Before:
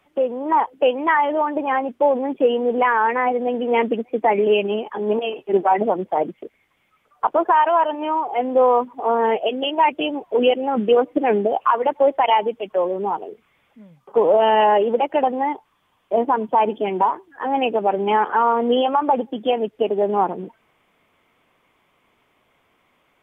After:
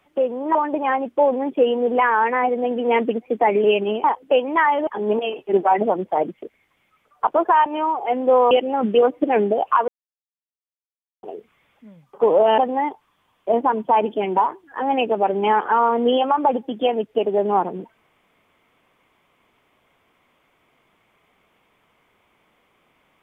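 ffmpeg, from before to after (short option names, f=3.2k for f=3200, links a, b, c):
-filter_complex "[0:a]asplit=9[a][b][c][d][e][f][g][h][i];[a]atrim=end=0.552[j];[b]atrim=start=1.378:end=4.872[k];[c]atrim=start=0.548:end=1.382[l];[d]atrim=start=4.868:end=7.662[m];[e]atrim=start=7.938:end=8.792[n];[f]atrim=start=10.448:end=11.82,asetpts=PTS-STARTPTS,afade=t=out:st=1.368:d=0.004:c=hsin[o];[g]atrim=start=11.82:end=13.17,asetpts=PTS-STARTPTS,volume=0[p];[h]atrim=start=13.17:end=14.522,asetpts=PTS-STARTPTS,afade=t=in:d=0.004:c=hsin[q];[i]atrim=start=15.218[r];[j][k]acrossfade=d=0.004:c1=hsin:c2=hsin[s];[s][l]acrossfade=d=0.004:c1=hsin:c2=hsin[t];[t][m]acrossfade=d=0.004:c1=hsin:c2=hsin[u];[u][n]acrossfade=d=0.004:c1=hsin:c2=hsin[v];[o][p][q]concat=n=3:v=0:a=1[w];[v][w]acrossfade=d=0.004:c1=hsin:c2=hsin[x];[x][r]acrossfade=d=0.004:c1=hsin:c2=hsin"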